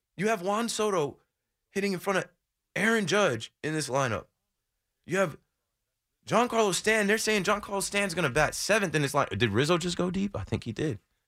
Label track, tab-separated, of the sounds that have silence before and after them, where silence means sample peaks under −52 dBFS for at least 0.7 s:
5.070000	5.360000	sound